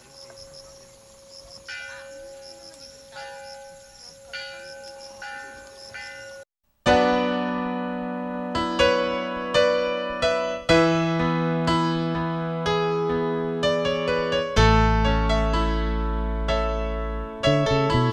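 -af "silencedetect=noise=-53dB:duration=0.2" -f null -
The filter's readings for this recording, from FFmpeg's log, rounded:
silence_start: 6.43
silence_end: 6.86 | silence_duration: 0.42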